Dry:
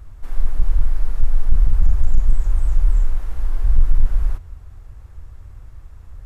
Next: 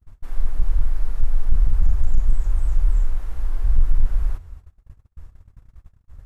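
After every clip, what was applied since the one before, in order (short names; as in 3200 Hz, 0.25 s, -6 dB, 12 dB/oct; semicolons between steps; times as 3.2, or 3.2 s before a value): gate -34 dBFS, range -37 dB; gain -2.5 dB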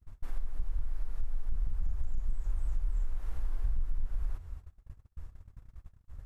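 compressor 6:1, threshold -22 dBFS, peak gain reduction 12.5 dB; gain -4 dB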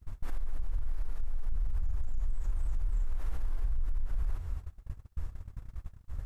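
limiter -32 dBFS, peak gain reduction 10.5 dB; gain +8 dB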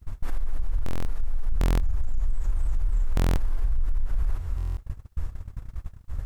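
stuck buffer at 0.84/1.59/3.15/4.56, samples 1024, times 8; gain +6.5 dB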